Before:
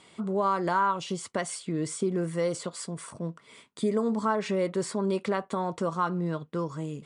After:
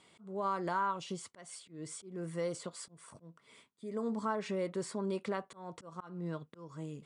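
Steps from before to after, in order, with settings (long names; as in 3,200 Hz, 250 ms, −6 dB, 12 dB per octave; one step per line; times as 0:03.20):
volume swells 277 ms
level −8 dB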